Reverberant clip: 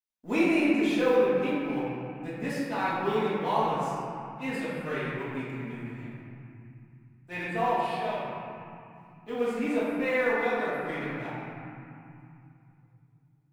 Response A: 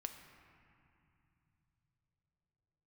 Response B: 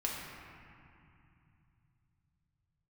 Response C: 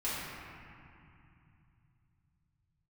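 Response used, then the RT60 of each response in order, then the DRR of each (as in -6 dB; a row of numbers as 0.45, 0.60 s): C; 2.5, 2.5, 2.6 s; 5.5, -4.0, -11.5 dB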